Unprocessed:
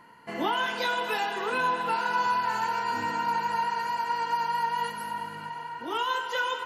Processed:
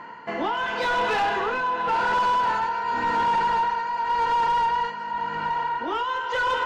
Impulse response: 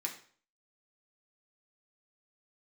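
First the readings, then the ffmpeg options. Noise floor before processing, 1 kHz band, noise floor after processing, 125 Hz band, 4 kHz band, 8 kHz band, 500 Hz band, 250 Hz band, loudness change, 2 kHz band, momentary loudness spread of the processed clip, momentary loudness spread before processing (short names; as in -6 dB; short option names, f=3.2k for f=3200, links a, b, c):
-41 dBFS, +5.0 dB, -33 dBFS, +3.5 dB, +0.5 dB, n/a, +5.0 dB, +2.5 dB, +4.5 dB, +3.5 dB, 6 LU, 8 LU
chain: -filter_complex "[0:a]tremolo=f=0.9:d=0.7,aresample=16000,asoftclip=type=hard:threshold=-28.5dB,aresample=44100,acontrast=78,asplit=2[a][b];[b]highpass=f=720:p=1,volume=12dB,asoftclip=type=tanh:threshold=-19dB[c];[a][c]amix=inputs=2:normalize=0,lowpass=f=1.2k:p=1,volume=-6dB,volume=3.5dB"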